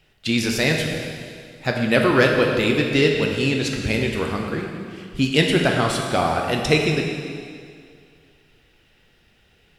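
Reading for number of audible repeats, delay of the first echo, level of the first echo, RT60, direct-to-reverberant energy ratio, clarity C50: no echo, no echo, no echo, 2.2 s, 1.0 dB, 3.0 dB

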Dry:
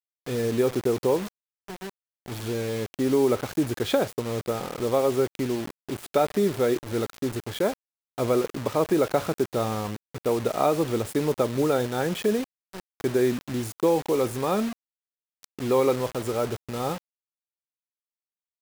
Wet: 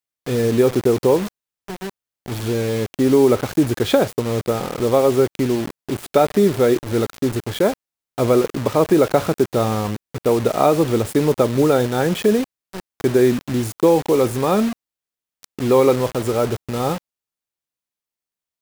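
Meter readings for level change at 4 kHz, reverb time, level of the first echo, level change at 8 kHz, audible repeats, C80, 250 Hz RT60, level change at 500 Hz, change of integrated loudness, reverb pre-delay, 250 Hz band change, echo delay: +6.0 dB, no reverb, no echo, +6.0 dB, no echo, no reverb, no reverb, +7.5 dB, +7.5 dB, no reverb, +8.0 dB, no echo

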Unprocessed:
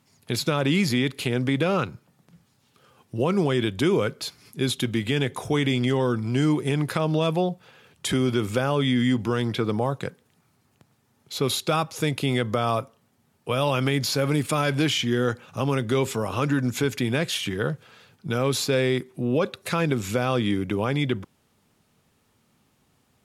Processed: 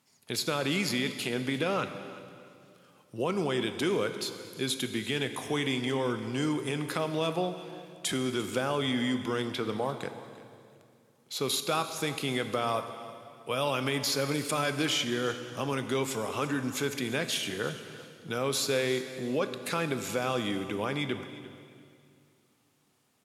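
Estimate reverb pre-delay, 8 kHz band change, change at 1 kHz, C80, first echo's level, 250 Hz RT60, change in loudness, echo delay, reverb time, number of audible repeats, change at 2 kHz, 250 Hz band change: 18 ms, -1.5 dB, -4.5 dB, 10.0 dB, -18.0 dB, 2.9 s, -6.0 dB, 347 ms, 2.4 s, 2, -4.0 dB, -8.0 dB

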